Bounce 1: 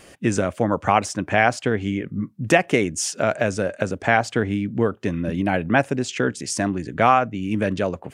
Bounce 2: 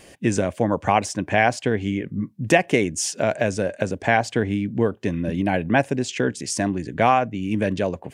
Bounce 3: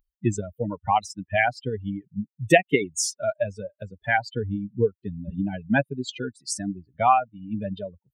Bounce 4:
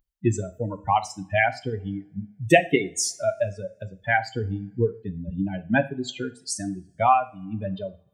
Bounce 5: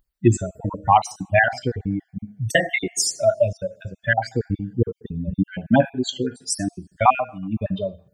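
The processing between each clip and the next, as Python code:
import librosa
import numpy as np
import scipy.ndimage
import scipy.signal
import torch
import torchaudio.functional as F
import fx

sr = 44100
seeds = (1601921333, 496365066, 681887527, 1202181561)

y1 = fx.peak_eq(x, sr, hz=1300.0, db=-10.5, octaves=0.26)
y2 = fx.bin_expand(y1, sr, power=3.0)
y2 = F.gain(torch.from_numpy(y2), 3.5).numpy()
y3 = fx.rev_double_slope(y2, sr, seeds[0], early_s=0.37, late_s=1.6, knee_db=-27, drr_db=9.5)
y4 = fx.spec_dropout(y3, sr, seeds[1], share_pct=35)
y4 = F.gain(torch.from_numpy(y4), 6.5).numpy()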